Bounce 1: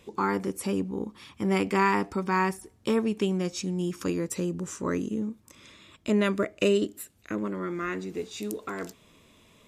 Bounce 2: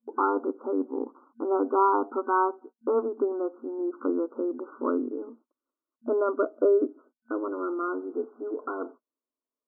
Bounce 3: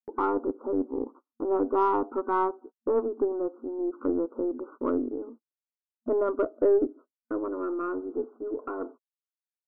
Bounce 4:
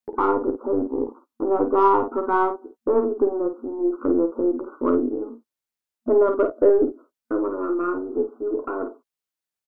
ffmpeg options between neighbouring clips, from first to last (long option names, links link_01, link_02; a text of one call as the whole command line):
ffmpeg -i in.wav -af "agate=range=-38dB:threshold=-46dB:ratio=16:detection=peak,afftfilt=real='re*between(b*sr/4096,230,1500)':imag='im*between(b*sr/4096,230,1500)':win_size=4096:overlap=0.75,volume=3dB" out.wav
ffmpeg -i in.wav -af "aeval=exprs='0.299*(cos(1*acos(clip(val(0)/0.299,-1,1)))-cos(1*PI/2))+0.0075*(cos(5*acos(clip(val(0)/0.299,-1,1)))-cos(5*PI/2))+0.00944*(cos(6*acos(clip(val(0)/0.299,-1,1)))-cos(6*PI/2))+0.00211*(cos(7*acos(clip(val(0)/0.299,-1,1)))-cos(7*PI/2))':channel_layout=same,lowpass=frequency=1000:poles=1,agate=range=-33dB:threshold=-46dB:ratio=16:detection=peak" out.wav
ffmpeg -i in.wav -af "aecho=1:1:12|51:0.335|0.422,volume=5.5dB" out.wav